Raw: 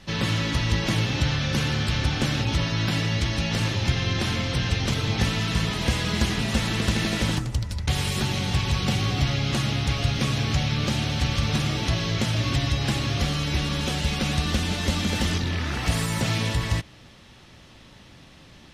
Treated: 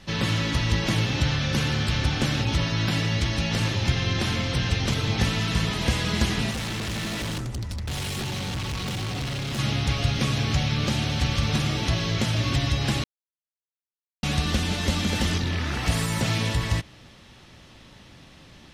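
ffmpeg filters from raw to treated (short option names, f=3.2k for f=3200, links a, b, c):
-filter_complex "[0:a]asettb=1/sr,asplit=3[a][b][c];[a]atrim=end=6.514[d];[b]atrim=start=6.51:end=9.59,asetpts=PTS-STARTPTS,afade=t=in:d=0.004:c=qsin,afade=t=out:st=3.076:d=0.004:c=qsin,volume=27.5dB,asoftclip=hard,volume=-27.5dB[e];[c]atrim=start=9.586[f];[d][e]acrossfade=d=0.004:c1=hsin:c2=qsin[g];[g][f]acrossfade=d=0.004:c1=qsin:c2=hsin,asplit=3[h][i][j];[h]atrim=end=13.04,asetpts=PTS-STARTPTS,afade=t=out:st=13.036:d=0.004:c=hsin[k];[i]atrim=start=13.04:end=14.23,asetpts=PTS-STARTPTS,volume=0[l];[j]atrim=start=14.23,asetpts=PTS-STARTPTS,afade=t=in:d=0.004:c=hsin[m];[k][l][m]concat=n=3:v=0:a=1"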